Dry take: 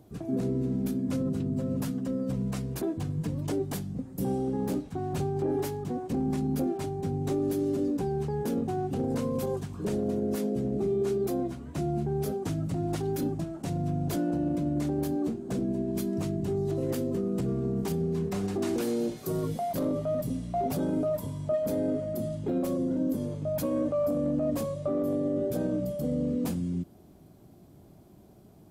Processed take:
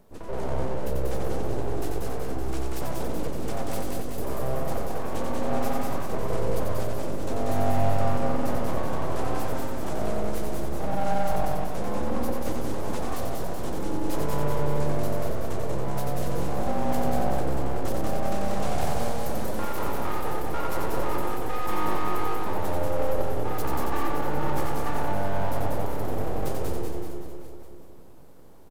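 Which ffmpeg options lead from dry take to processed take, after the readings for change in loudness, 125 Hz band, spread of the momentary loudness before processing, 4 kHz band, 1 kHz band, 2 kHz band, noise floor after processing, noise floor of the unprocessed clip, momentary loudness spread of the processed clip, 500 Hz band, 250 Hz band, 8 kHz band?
0.0 dB, 0.0 dB, 4 LU, +6.0 dB, +10.0 dB, +11.5 dB, −33 dBFS, −53 dBFS, 5 LU, +0.5 dB, −4.0 dB, +4.0 dB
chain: -filter_complex "[0:a]asplit=2[link_01][link_02];[link_02]aecho=0:1:188|376|564|752|940|1128|1316:0.708|0.375|0.199|0.105|0.0559|0.0296|0.0157[link_03];[link_01][link_03]amix=inputs=2:normalize=0,aeval=exprs='abs(val(0))':channel_layout=same,asplit=2[link_04][link_05];[link_05]aecho=0:1:90|216|392.4|639.4|985.1:0.631|0.398|0.251|0.158|0.1[link_06];[link_04][link_06]amix=inputs=2:normalize=0"

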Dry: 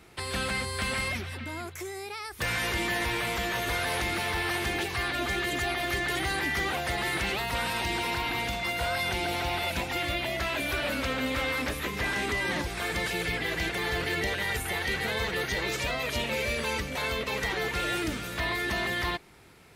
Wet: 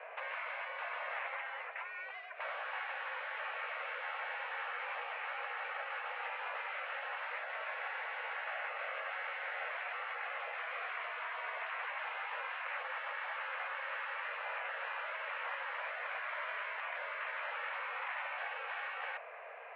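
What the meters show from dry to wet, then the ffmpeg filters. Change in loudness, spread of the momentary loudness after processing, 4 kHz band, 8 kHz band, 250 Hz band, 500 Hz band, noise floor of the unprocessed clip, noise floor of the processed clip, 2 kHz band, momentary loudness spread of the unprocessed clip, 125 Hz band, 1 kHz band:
−10.5 dB, 1 LU, −18.0 dB, below −40 dB, below −40 dB, −14.0 dB, −40 dBFS, −47 dBFS, −9.0 dB, 3 LU, below −40 dB, −7.0 dB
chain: -af "asoftclip=type=tanh:threshold=-33dB,afftfilt=real='re*lt(hypot(re,im),0.0224)':imag='im*lt(hypot(re,im),0.0224)':win_size=1024:overlap=0.75,highpass=frequency=210:width_type=q:width=0.5412,highpass=frequency=210:width_type=q:width=1.307,lowpass=frequency=2100:width_type=q:width=0.5176,lowpass=frequency=2100:width_type=q:width=0.7071,lowpass=frequency=2100:width_type=q:width=1.932,afreqshift=290,volume=8.5dB"

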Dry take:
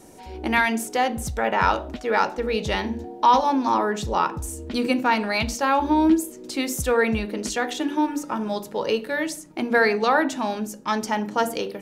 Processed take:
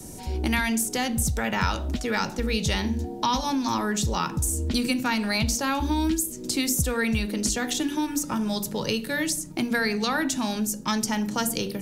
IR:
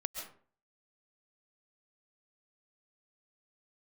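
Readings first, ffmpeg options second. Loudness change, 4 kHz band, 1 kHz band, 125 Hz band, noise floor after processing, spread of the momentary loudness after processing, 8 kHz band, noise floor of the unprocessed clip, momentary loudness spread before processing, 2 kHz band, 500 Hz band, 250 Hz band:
−2.5 dB, +2.5 dB, −8.0 dB, +5.5 dB, −38 dBFS, 3 LU, +6.5 dB, −42 dBFS, 9 LU, −3.5 dB, −7.5 dB, −1.0 dB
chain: -filter_complex "[0:a]bass=frequency=250:gain=14,treble=frequency=4000:gain=12,acrossover=split=84|260|1300[link_01][link_02][link_03][link_04];[link_01]acompressor=threshold=-32dB:ratio=4[link_05];[link_02]acompressor=threshold=-30dB:ratio=4[link_06];[link_03]acompressor=threshold=-32dB:ratio=4[link_07];[link_04]acompressor=threshold=-25dB:ratio=4[link_08];[link_05][link_06][link_07][link_08]amix=inputs=4:normalize=0"

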